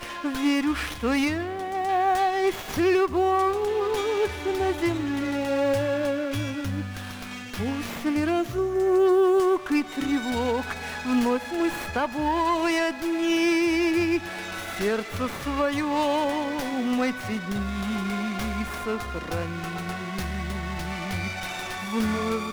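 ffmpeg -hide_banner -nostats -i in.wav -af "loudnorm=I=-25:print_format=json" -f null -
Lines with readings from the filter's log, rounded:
"input_i" : "-26.1",
"input_tp" : "-13.0",
"input_lra" : "5.6",
"input_thresh" : "-36.1",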